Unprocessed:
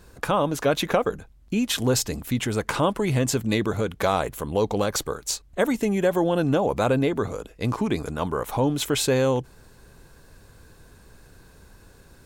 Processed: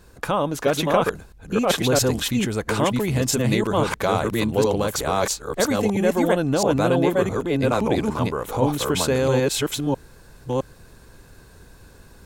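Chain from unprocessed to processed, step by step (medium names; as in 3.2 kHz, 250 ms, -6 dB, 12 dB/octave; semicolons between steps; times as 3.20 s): chunks repeated in reverse 663 ms, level 0 dB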